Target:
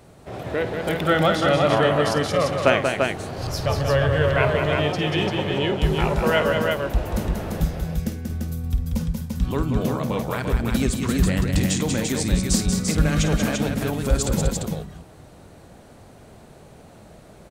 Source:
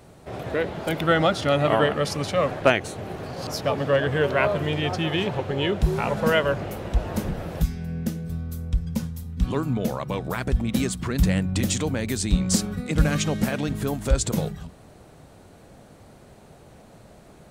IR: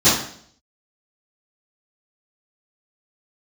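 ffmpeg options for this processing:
-filter_complex "[0:a]asplit=3[a][b][c];[a]afade=t=out:st=3.37:d=0.02[d];[b]asubboost=boost=11.5:cutoff=75,afade=t=in:st=3.37:d=0.02,afade=t=out:st=4.41:d=0.02[e];[c]afade=t=in:st=4.41:d=0.02[f];[d][e][f]amix=inputs=3:normalize=0,aecho=1:1:51|186|242|343:0.251|0.531|0.119|0.631"

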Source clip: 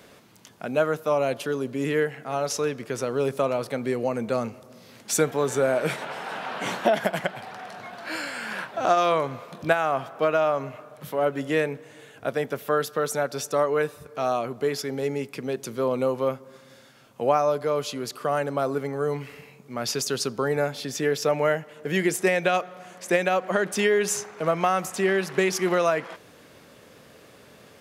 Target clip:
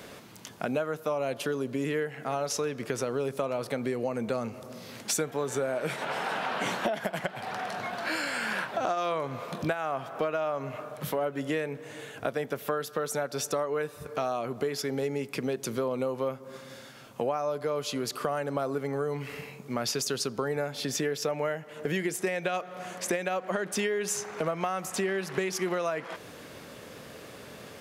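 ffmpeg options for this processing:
-af "acompressor=threshold=-33dB:ratio=5,volume=5dB"

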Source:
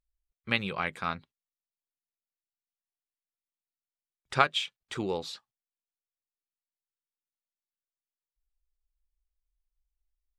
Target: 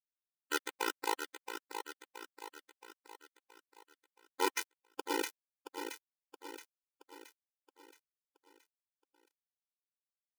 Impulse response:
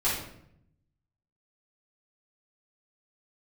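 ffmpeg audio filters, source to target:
-filter_complex "[0:a]aeval=exprs='val(0)+0.5*0.0335*sgn(val(0))':c=same,acrossover=split=2500[a][b];[b]acompressor=threshold=-51dB:ratio=4:attack=1:release=60[c];[a][c]amix=inputs=2:normalize=0,agate=range=-58dB:threshold=-35dB:ratio=16:detection=peak,areverse,acompressor=threshold=-40dB:ratio=12,areverse,asetrate=29433,aresample=44100,atempo=1.49831,acrusher=bits=5:mix=0:aa=0.000001,asplit=2[d][e];[e]aecho=0:1:673|1346|2019|2692|3365|4038:0.398|0.199|0.0995|0.0498|0.0249|0.0124[f];[d][f]amix=inputs=2:normalize=0,afftfilt=real='re*eq(mod(floor(b*sr/1024/260),2),1)':imag='im*eq(mod(floor(b*sr/1024/260),2),1)':win_size=1024:overlap=0.75,volume=13dB"

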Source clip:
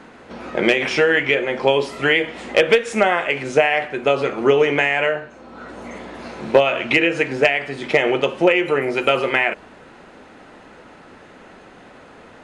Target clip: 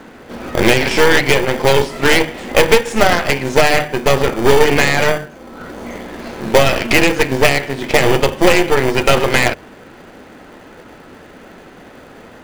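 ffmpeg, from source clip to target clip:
-filter_complex "[0:a]aeval=exprs='0.708*(cos(1*acos(clip(val(0)/0.708,-1,1)))-cos(1*PI/2))+0.158*(cos(6*acos(clip(val(0)/0.708,-1,1)))-cos(6*PI/2))':c=same,bandreject=f=50:t=h:w=6,bandreject=f=100:t=h:w=6,bandreject=f=150:t=h:w=6,bandreject=f=200:t=h:w=6,asplit=2[a][b];[b]acrusher=samples=33:mix=1:aa=0.000001,volume=-5.5dB[c];[a][c]amix=inputs=2:normalize=0,apsyclip=4.5dB,volume=-1.5dB"

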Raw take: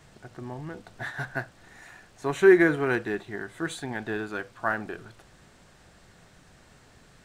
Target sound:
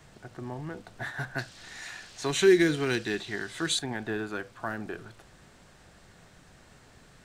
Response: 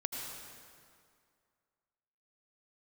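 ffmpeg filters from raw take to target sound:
-filter_complex "[0:a]asettb=1/sr,asplit=3[a][b][c];[a]atrim=end=1.384[d];[b]atrim=start=1.38:end=3.79,asetpts=PTS-STARTPTS,afade=t=in:d=0.004:c=qsin,afade=t=out:st=2.406:d=0.004:c=qsin,equalizer=f=4.5k:t=o:w=2.3:g=14.5[e];[c]atrim=start=3.786[f];[d][e]acrossfade=d=0.004:c1=hsin:c2=qsin[g];[g][f]acrossfade=d=0.004:c1=qsin:c2=hsin,acrossover=split=410|3000[h][i][j];[i]acompressor=threshold=-33dB:ratio=6[k];[h][k][j]amix=inputs=3:normalize=0"

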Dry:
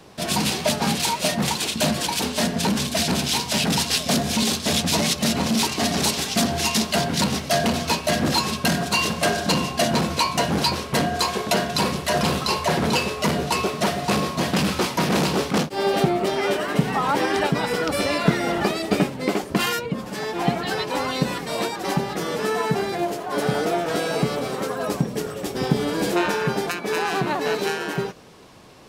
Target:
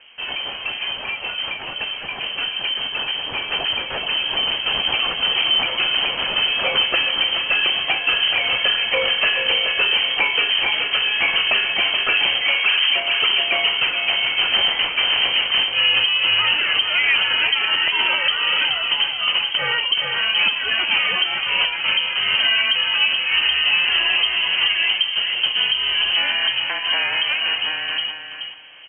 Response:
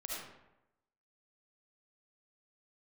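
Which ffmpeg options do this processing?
-filter_complex "[0:a]asoftclip=type=tanh:threshold=-11dB,lowpass=f=2.8k:t=q:w=0.5098,lowpass=f=2.8k:t=q:w=0.6013,lowpass=f=2.8k:t=q:w=0.9,lowpass=f=2.8k:t=q:w=2.563,afreqshift=-3300,asettb=1/sr,asplit=3[a][b][c];[a]atrim=end=12.444[d];[b]atrim=start=12.44:end=13,asetpts=PTS-STARTPTS,afade=t=in:d=0.004:c=qsin,afade=t=out:st=0.556:d=0.004:c=qsin,tiltshelf=f=650:g=-6[e];[c]atrim=start=12.996[f];[d][e]acrossfade=d=0.004:c1=hsin:c2=qsin[g];[g][f]acrossfade=d=0.004:c1=qsin:c2=hsin,aecho=1:1:426|852|1278:0.376|0.0827|0.0182,alimiter=limit=-16dB:level=0:latency=1:release=404,dynaudnorm=f=770:g=11:m=8dB"

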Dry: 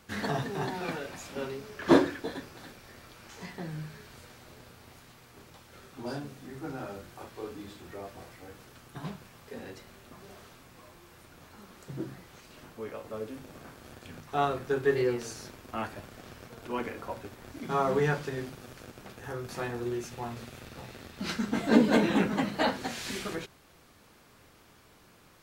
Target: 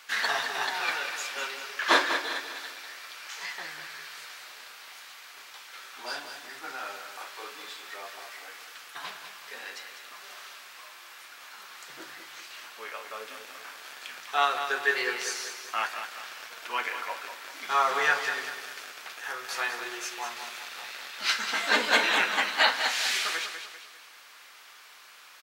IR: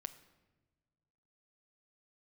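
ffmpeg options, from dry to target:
-filter_complex "[0:a]highpass=1.4k,aecho=1:1:197|394|591|788|985:0.376|0.158|0.0663|0.0278|0.0117,asplit=2[a][b];[1:a]atrim=start_sample=2205,lowpass=7k[c];[b][c]afir=irnorm=-1:irlink=0,volume=0.5dB[d];[a][d]amix=inputs=2:normalize=0,volume=7.5dB"

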